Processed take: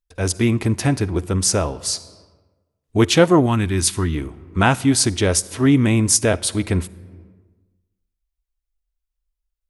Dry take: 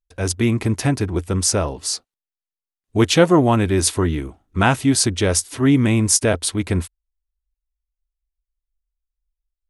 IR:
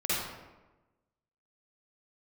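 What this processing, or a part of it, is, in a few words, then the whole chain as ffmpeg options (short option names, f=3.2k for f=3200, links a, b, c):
compressed reverb return: -filter_complex "[0:a]asplit=2[a][b];[1:a]atrim=start_sample=2205[c];[b][c]afir=irnorm=-1:irlink=0,acompressor=threshold=-19dB:ratio=5,volume=-17dB[d];[a][d]amix=inputs=2:normalize=0,asettb=1/sr,asplit=3[e][f][g];[e]atrim=end=3.464[h];[f]atrim=start=3.46:end=4.15,asetpts=PTS-STARTPTS,afade=t=in:d=0.004:c=qsin,afade=t=out:st=0.686:d=0.004:c=qsin,equalizer=f=550:t=o:w=1.2:g=-11.5[i];[g]atrim=start=4.146[j];[h][i]acrossfade=d=0.004:c1=hsin:c2=qsin[k];[k][j]acrossfade=d=0.004:c1=qsin:c2=hsin"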